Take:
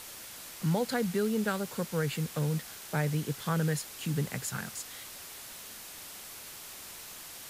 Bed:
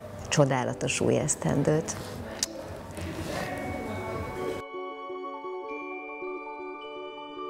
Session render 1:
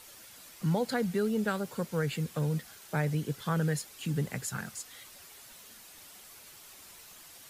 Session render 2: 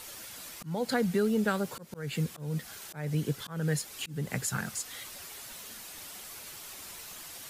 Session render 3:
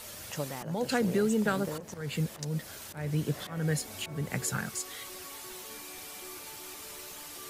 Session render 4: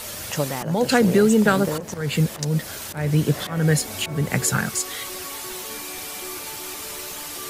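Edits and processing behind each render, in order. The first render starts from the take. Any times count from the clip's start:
broadband denoise 8 dB, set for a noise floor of −46 dBFS
in parallel at +1.5 dB: downward compressor, threshold −39 dBFS, peak gain reduction 13 dB; on the sum: volume swells 266 ms
mix in bed −14 dB
level +11 dB

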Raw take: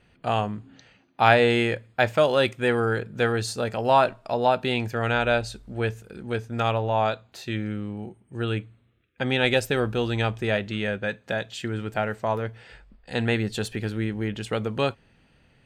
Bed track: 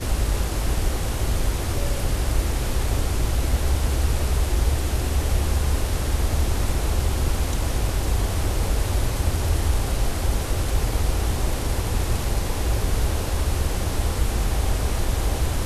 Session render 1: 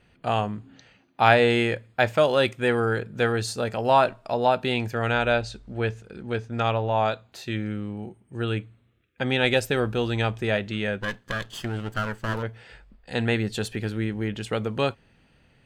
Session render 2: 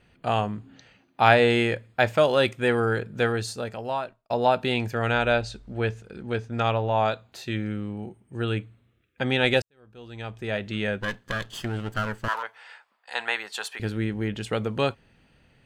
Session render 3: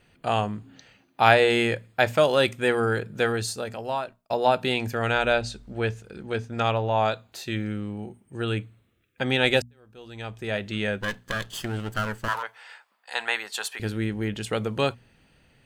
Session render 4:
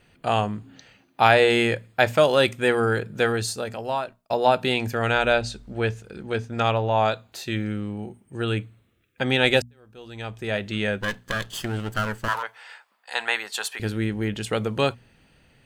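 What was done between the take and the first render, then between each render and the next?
0:05.33–0:06.96: low-pass filter 6,700 Hz; 0:11.00–0:12.43: lower of the sound and its delayed copy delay 0.63 ms
0:03.17–0:04.30: fade out; 0:09.62–0:10.79: fade in quadratic; 0:12.28–0:13.80: high-pass with resonance 970 Hz, resonance Q 2.3
high-shelf EQ 6,500 Hz +8 dB; mains-hum notches 60/120/180/240 Hz
level +2 dB; brickwall limiter −3 dBFS, peak gain reduction 3 dB

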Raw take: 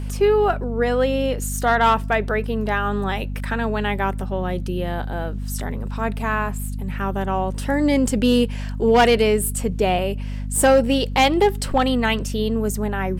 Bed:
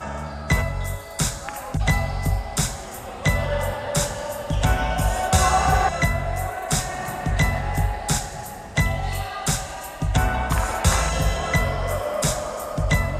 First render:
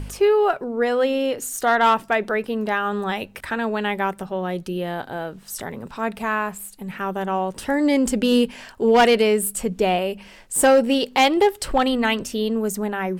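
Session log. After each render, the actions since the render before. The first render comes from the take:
hum removal 50 Hz, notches 5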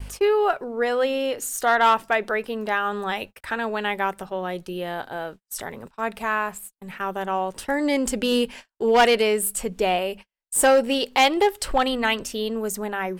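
noise gate −34 dBFS, range −48 dB
parametric band 170 Hz −7 dB 2.3 octaves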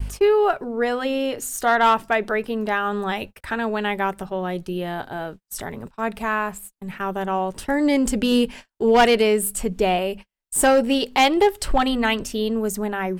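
low-shelf EQ 320 Hz +8.5 dB
notch filter 510 Hz, Q 12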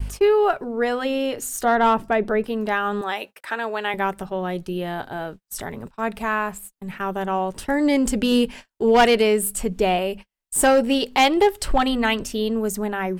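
0:01.64–0:02.44: tilt shelving filter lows +6 dB, about 750 Hz
0:03.01–0:03.94: high-pass filter 410 Hz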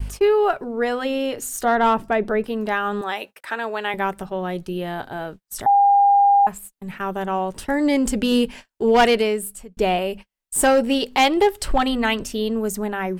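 0:05.66–0:06.47: beep over 804 Hz −11 dBFS
0:09.10–0:09.77: fade out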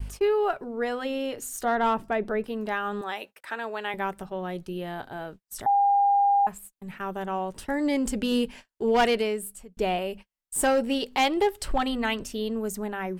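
level −6.5 dB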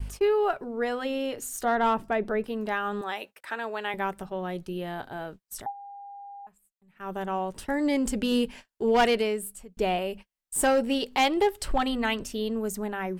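0:05.55–0:07.13: duck −22.5 dB, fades 0.18 s

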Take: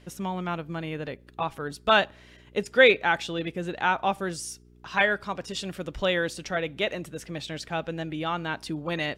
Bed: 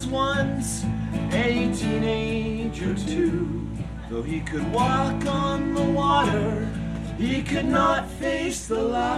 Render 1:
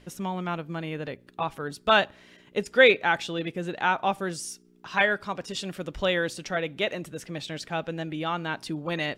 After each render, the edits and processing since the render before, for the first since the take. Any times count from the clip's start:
hum removal 60 Hz, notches 2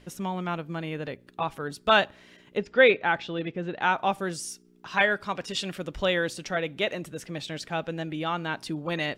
0:02.57–0:03.82: high-frequency loss of the air 190 metres
0:05.20–0:05.78: dynamic equaliser 2,500 Hz, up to +5 dB, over −46 dBFS, Q 0.73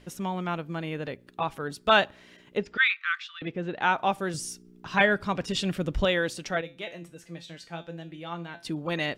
0:02.77–0:03.42: Chebyshev high-pass filter 1,100 Hz, order 8
0:04.34–0:06.05: low-shelf EQ 260 Hz +11.5 dB
0:06.61–0:08.65: tuned comb filter 170 Hz, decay 0.29 s, mix 80%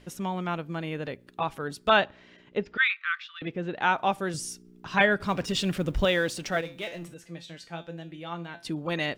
0:01.90–0:03.36: high-frequency loss of the air 110 metres
0:05.20–0:07.14: mu-law and A-law mismatch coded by mu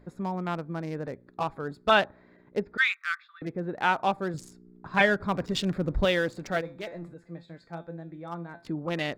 adaptive Wiener filter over 15 samples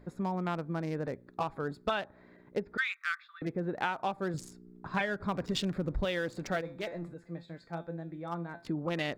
downward compressor 12 to 1, threshold −28 dBFS, peak gain reduction 13 dB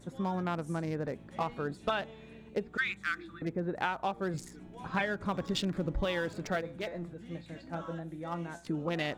mix in bed −26.5 dB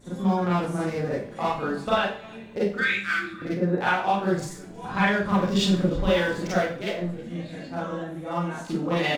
single-tap delay 319 ms −24 dB
four-comb reverb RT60 0.42 s, combs from 31 ms, DRR −9 dB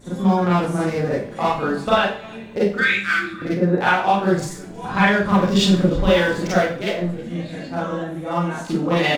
level +6 dB

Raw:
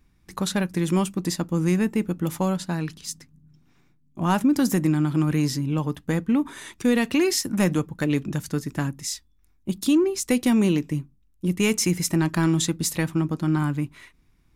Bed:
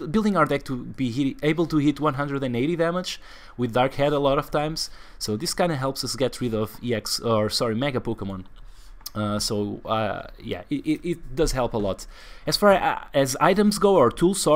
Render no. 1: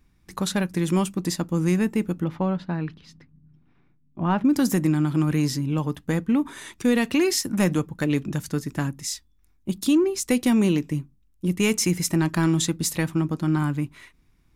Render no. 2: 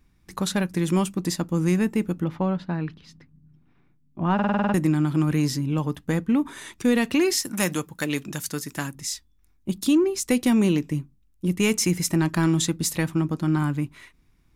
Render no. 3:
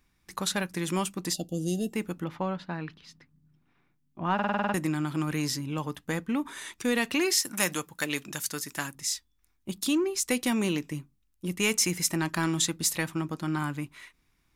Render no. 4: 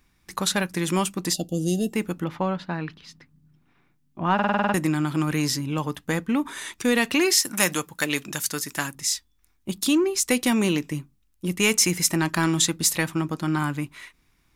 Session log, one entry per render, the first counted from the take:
0:02.24–0:04.45: high-frequency loss of the air 330 metres
0:04.34: stutter in place 0.05 s, 8 plays; 0:07.45–0:08.95: spectral tilt +2.5 dB per octave
low-shelf EQ 470 Hz −10.5 dB; 0:01.33–0:01.93: gain on a spectral selection 790–2,700 Hz −29 dB
level +5.5 dB

